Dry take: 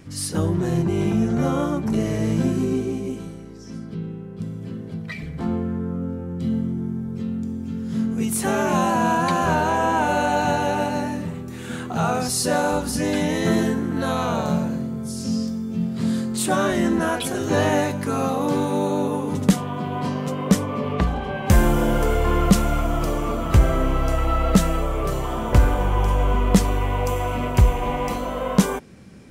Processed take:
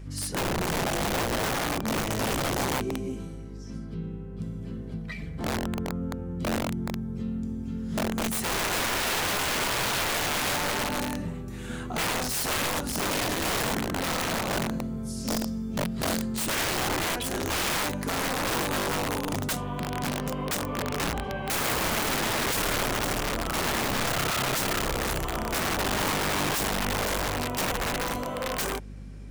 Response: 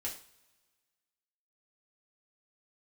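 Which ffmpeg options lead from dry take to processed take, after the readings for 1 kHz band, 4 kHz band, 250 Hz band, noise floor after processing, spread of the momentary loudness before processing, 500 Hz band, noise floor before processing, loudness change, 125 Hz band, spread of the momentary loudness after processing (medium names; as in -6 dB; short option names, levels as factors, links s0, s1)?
-6.0 dB, +4.0 dB, -9.5 dB, -37 dBFS, 10 LU, -7.5 dB, -35 dBFS, -5.5 dB, -10.5 dB, 8 LU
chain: -af "aeval=exprs='val(0)+0.0178*(sin(2*PI*50*n/s)+sin(2*PI*2*50*n/s)/2+sin(2*PI*3*50*n/s)/3+sin(2*PI*4*50*n/s)/4+sin(2*PI*5*50*n/s)/5)':c=same,aeval=exprs='(mod(7.5*val(0)+1,2)-1)/7.5':c=same,volume=0.562"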